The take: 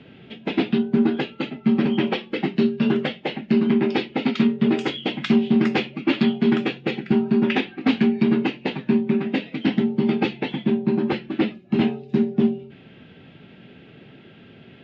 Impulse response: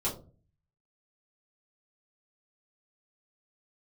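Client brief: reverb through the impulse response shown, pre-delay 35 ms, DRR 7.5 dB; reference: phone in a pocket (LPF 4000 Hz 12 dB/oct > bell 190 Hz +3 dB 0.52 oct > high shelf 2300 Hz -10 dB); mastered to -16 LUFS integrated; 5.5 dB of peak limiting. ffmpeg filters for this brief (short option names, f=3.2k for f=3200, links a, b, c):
-filter_complex "[0:a]alimiter=limit=-13.5dB:level=0:latency=1,asplit=2[a][b];[1:a]atrim=start_sample=2205,adelay=35[c];[b][c]afir=irnorm=-1:irlink=0,volume=-13.5dB[d];[a][d]amix=inputs=2:normalize=0,lowpass=4k,equalizer=f=190:t=o:w=0.52:g=3,highshelf=f=2.3k:g=-10,volume=6.5dB"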